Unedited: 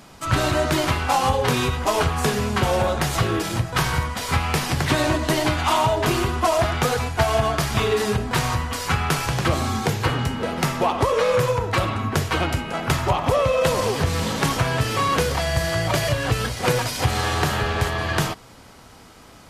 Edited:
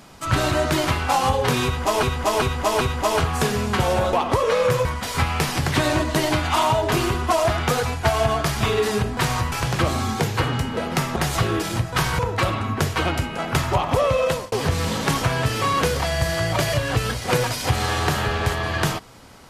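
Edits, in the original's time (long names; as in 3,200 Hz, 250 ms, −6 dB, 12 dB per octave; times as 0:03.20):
0:01.64–0:02.03: repeat, 4 plays
0:02.96–0:03.99: swap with 0:10.82–0:11.54
0:08.66–0:09.18: remove
0:13.58–0:13.87: fade out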